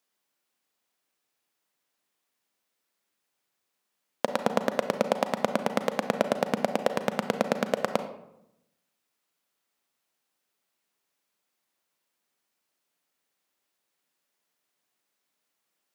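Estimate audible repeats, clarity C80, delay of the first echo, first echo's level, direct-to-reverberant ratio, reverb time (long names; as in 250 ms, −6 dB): no echo audible, 13.5 dB, no echo audible, no echo audible, 8.5 dB, 0.85 s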